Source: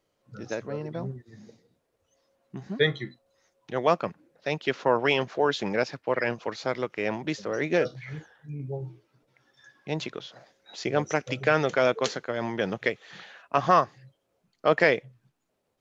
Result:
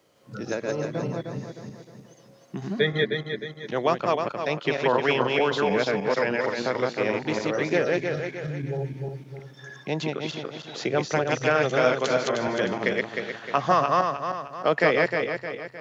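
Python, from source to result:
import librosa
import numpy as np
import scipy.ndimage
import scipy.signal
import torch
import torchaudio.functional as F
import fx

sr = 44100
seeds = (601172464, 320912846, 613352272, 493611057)

y = fx.reverse_delay_fb(x, sr, ms=154, feedback_pct=55, wet_db=-1.5)
y = scipy.signal.sosfilt(scipy.signal.butter(2, 98.0, 'highpass', fs=sr, output='sos'), y)
y = fx.band_squash(y, sr, depth_pct=40)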